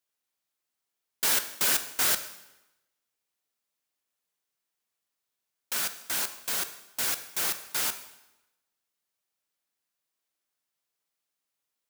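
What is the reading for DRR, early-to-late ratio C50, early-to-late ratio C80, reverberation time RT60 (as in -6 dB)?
9.0 dB, 12.0 dB, 14.0 dB, 0.95 s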